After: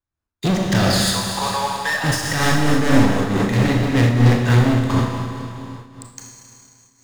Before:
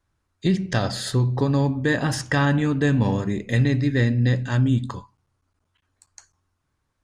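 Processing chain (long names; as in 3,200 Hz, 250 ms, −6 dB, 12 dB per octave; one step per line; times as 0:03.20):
0:01.08–0:02.04: high-pass filter 760 Hz 24 dB per octave
leveller curve on the samples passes 5
four-comb reverb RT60 2.9 s, combs from 26 ms, DRR −1 dB
amplitude modulation by smooth noise, depth 65%
level −3 dB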